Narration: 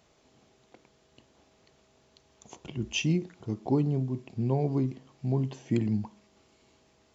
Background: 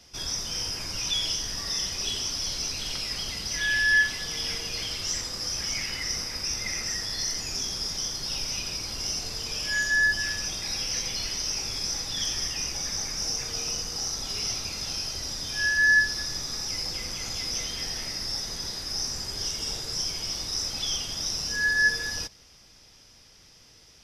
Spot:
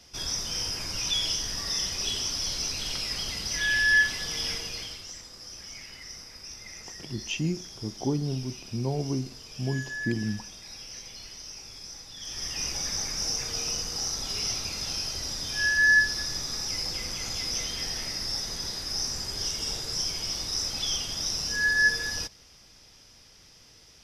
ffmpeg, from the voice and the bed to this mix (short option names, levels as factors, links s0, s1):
-filter_complex "[0:a]adelay=4350,volume=0.794[s0];[1:a]volume=4.22,afade=t=out:st=4.46:d=0.62:silence=0.237137,afade=t=in:st=12.21:d=0.46:silence=0.237137[s1];[s0][s1]amix=inputs=2:normalize=0"